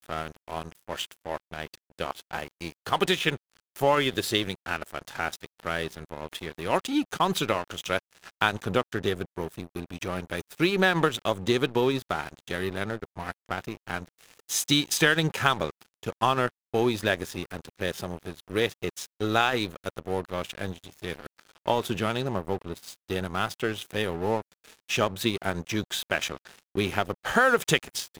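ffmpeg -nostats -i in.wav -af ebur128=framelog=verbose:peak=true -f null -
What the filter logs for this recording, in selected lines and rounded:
Integrated loudness:
  I:         -28.3 LUFS
  Threshold: -38.7 LUFS
Loudness range:
  LRA:         4.6 LU
  Threshold: -48.7 LUFS
  LRA low:   -31.1 LUFS
  LRA high:  -26.5 LUFS
True peak:
  Peak:       -5.3 dBFS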